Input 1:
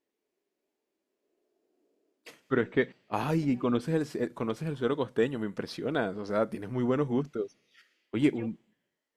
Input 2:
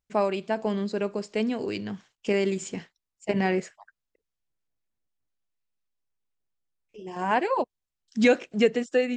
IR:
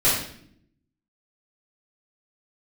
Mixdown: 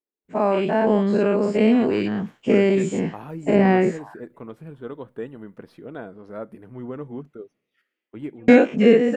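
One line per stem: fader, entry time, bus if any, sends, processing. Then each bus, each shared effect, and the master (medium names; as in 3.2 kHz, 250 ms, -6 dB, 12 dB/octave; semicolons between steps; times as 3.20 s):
-12.5 dB, 0.00 s, no send, de-esser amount 95%
-2.5 dB, 0.25 s, muted 5.88–8.48 s, no send, every event in the spectrogram widened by 120 ms; peaking EQ 250 Hz +4 dB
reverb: none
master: peaking EQ 5.5 kHz -14.5 dB 1.7 oct; level rider gain up to 7 dB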